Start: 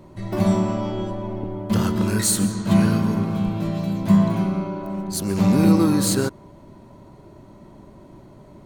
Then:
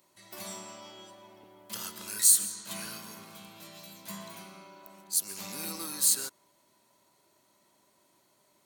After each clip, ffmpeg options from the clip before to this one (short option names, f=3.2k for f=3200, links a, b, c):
-af "aderivative"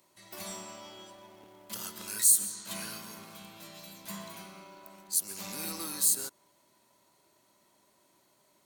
-filter_complex "[0:a]acrossover=split=890|6600[a][b][c];[a]acrusher=bits=2:mode=log:mix=0:aa=0.000001[d];[b]alimiter=level_in=5.5dB:limit=-24dB:level=0:latency=1:release=307,volume=-5.5dB[e];[d][e][c]amix=inputs=3:normalize=0"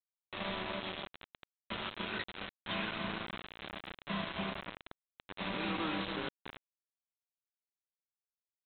-filter_complex "[0:a]asplit=2[a][b];[b]adelay=285,lowpass=f=1.5k:p=1,volume=-4dB,asplit=2[c][d];[d]adelay=285,lowpass=f=1.5k:p=1,volume=0.25,asplit=2[e][f];[f]adelay=285,lowpass=f=1.5k:p=1,volume=0.25[g];[a][c][e][g]amix=inputs=4:normalize=0,aresample=8000,acrusher=bits=6:mix=0:aa=0.000001,aresample=44100,volume=4.5dB"